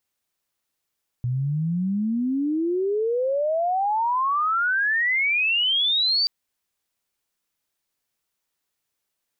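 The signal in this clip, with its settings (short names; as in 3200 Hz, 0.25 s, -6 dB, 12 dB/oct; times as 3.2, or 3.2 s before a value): chirp logarithmic 120 Hz -> 4700 Hz -21.5 dBFS -> -18 dBFS 5.03 s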